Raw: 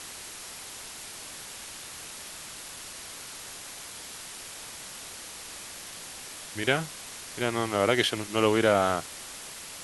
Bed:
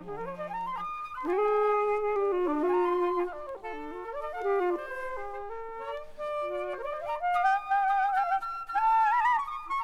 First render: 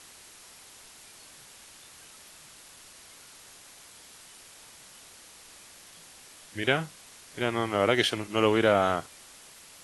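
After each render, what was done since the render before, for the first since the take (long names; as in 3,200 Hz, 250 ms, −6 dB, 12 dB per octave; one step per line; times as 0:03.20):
noise reduction from a noise print 9 dB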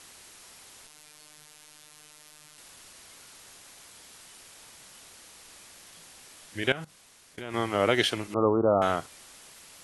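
0:00.87–0:02.58: phases set to zero 151 Hz
0:06.72–0:07.54: output level in coarse steps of 19 dB
0:08.34–0:08.82: Butterworth low-pass 1,300 Hz 96 dB per octave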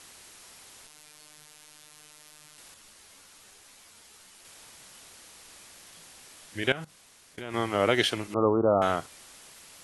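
0:02.74–0:04.45: string-ensemble chorus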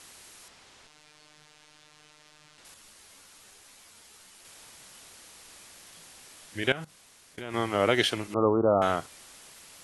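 0:00.48–0:02.65: high-frequency loss of the air 86 metres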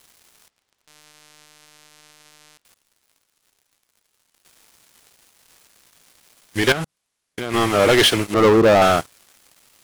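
leveller curve on the samples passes 5
expander for the loud parts 1.5 to 1, over −33 dBFS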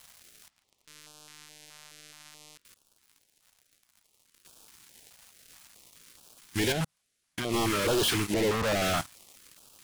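hard clipping −23 dBFS, distortion −7 dB
notch on a step sequencer 4.7 Hz 350–2,000 Hz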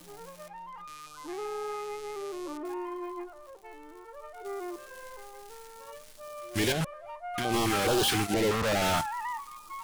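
mix in bed −10 dB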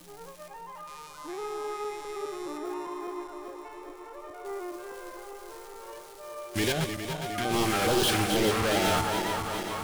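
feedback delay that plays each chunk backwards 205 ms, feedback 81%, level −7.5 dB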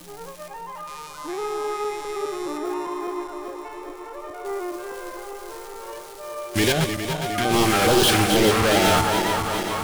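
level +7.5 dB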